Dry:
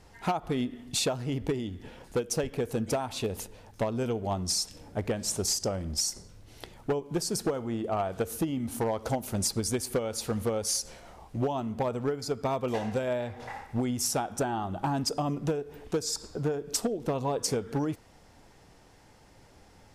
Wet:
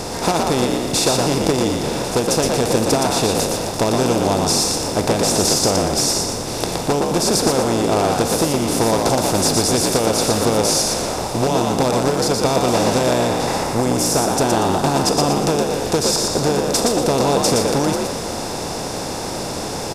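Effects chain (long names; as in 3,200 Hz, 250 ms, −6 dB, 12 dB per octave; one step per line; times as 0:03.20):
compressor on every frequency bin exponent 0.4
0:13.63–0:14.31: parametric band 3,500 Hz −5 dB 1.2 octaves
echo with shifted repeats 118 ms, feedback 37%, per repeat +56 Hz, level −3.5 dB
level +5 dB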